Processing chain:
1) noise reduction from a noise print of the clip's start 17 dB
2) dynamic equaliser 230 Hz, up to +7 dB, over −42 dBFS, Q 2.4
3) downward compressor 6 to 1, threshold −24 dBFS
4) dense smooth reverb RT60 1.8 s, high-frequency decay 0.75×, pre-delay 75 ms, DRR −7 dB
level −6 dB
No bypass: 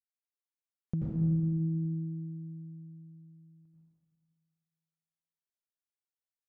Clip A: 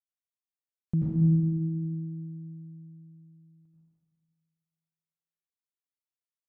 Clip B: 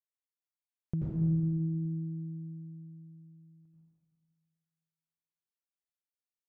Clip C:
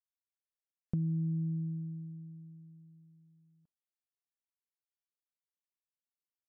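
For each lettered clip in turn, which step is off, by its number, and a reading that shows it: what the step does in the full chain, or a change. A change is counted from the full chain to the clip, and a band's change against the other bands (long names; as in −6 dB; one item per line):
3, change in momentary loudness spread +2 LU
2, change in momentary loudness spread +1 LU
4, change in integrated loudness −3.5 LU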